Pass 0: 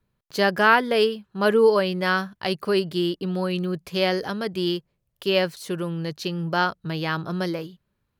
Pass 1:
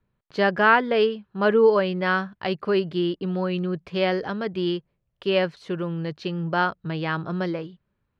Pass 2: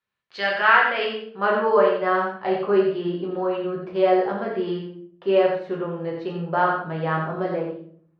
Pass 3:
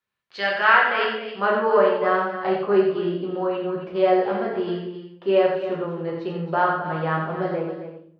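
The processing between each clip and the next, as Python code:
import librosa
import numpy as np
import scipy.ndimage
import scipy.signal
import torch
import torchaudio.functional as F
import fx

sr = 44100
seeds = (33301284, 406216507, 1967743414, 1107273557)

y1 = scipy.signal.sosfilt(scipy.signal.butter(2, 2900.0, 'lowpass', fs=sr, output='sos'), x)
y2 = fx.filter_sweep_bandpass(y1, sr, from_hz=3800.0, to_hz=670.0, start_s=0.01, end_s=2.15, q=0.78)
y2 = y2 + 10.0 ** (-6.0 / 20.0) * np.pad(y2, (int(87 * sr / 1000.0), 0))[:len(y2)]
y2 = fx.room_shoebox(y2, sr, seeds[0], volume_m3=60.0, walls='mixed', distance_m=0.9)
y3 = y2 + 10.0 ** (-11.0 / 20.0) * np.pad(y2, (int(268 * sr / 1000.0), 0))[:len(y2)]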